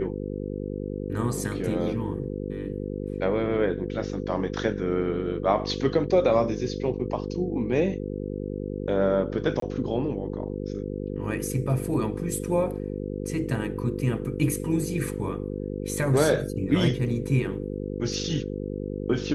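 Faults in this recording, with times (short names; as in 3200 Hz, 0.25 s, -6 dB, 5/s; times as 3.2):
buzz 50 Hz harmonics 10 -32 dBFS
9.6–9.62 gap 23 ms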